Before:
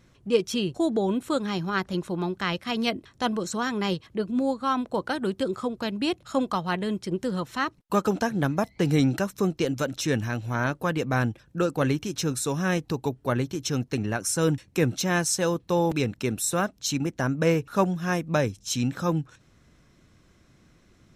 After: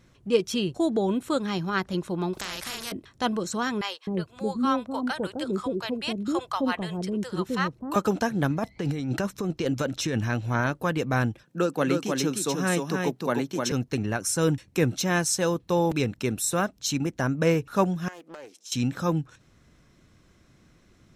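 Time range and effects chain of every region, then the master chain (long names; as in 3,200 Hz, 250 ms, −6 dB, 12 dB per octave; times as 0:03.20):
0:02.33–0:02.92: double-tracking delay 39 ms −3 dB + downward compressor 2.5 to 1, threshold −28 dBFS + every bin compressed towards the loudest bin 4 to 1
0:03.81–0:07.96: de-essing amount 35% + multiband delay without the direct sound highs, lows 260 ms, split 610 Hz
0:08.50–0:10.61: high-shelf EQ 9,300 Hz −8 dB + compressor whose output falls as the input rises −26 dBFS
0:11.43–0:13.72: de-essing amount 30% + high-pass filter 160 Hz 24 dB per octave + single-tap delay 306 ms −4 dB
0:18.08–0:18.72: high-pass filter 340 Hz 24 dB per octave + downward compressor 8 to 1, threshold −39 dBFS + highs frequency-modulated by the lows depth 0.33 ms
whole clip: no processing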